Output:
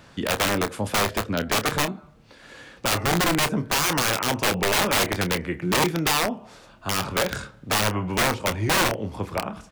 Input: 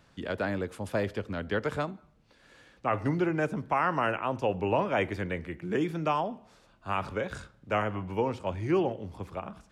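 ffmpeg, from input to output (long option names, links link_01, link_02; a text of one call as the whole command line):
ffmpeg -i in.wav -filter_complex "[0:a]lowshelf=frequency=75:gain=-6,asplit=2[link_01][link_02];[link_02]acompressor=threshold=-40dB:ratio=5,volume=-2dB[link_03];[link_01][link_03]amix=inputs=2:normalize=0,aeval=exprs='(mod(13.3*val(0)+1,2)-1)/13.3':channel_layout=same,asplit=2[link_04][link_05];[link_05]adelay=28,volume=-11dB[link_06];[link_04][link_06]amix=inputs=2:normalize=0,volume=7dB" out.wav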